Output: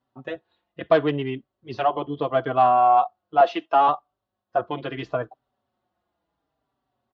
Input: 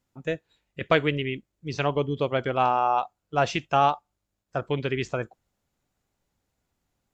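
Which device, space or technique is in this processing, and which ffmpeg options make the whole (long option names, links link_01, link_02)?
barber-pole flanger into a guitar amplifier: -filter_complex "[0:a]asettb=1/sr,asplit=3[link_01][link_02][link_03];[link_01]atrim=end=3.404[link_04];[link_02]atrim=start=3.4:end=3.88,asetpts=PTS-STARTPTS,afade=type=in:duration=0.004:curve=qsin,afade=type=out:start_time=0.476:duration=0.004:curve=qsin,highpass=frequency=280:width=0.5412,highpass=frequency=280:width=1.3066[link_05];[link_03]atrim=start=3.876[link_06];[link_04][link_05]acrossfade=duration=0.004:curve1=hsin:curve2=qsin[link_07];[link_07][link_06]acrossfade=duration=0.004:curve1=qsin:curve2=hsin,asplit=2[link_08][link_09];[link_09]adelay=4.7,afreqshift=-0.74[link_10];[link_08][link_10]amix=inputs=2:normalize=1,asoftclip=type=tanh:threshold=-17dB,highpass=86,equalizer=frequency=98:width_type=q:width=4:gain=-6,equalizer=frequency=170:width_type=q:width=4:gain=-6,equalizer=frequency=320:width_type=q:width=4:gain=3,equalizer=frequency=690:width_type=q:width=4:gain=9,equalizer=frequency=1100:width_type=q:width=4:gain=7,equalizer=frequency=2300:width_type=q:width=4:gain=-9,lowpass=frequency=3900:width=0.5412,lowpass=frequency=3900:width=1.3066,volume=3.5dB"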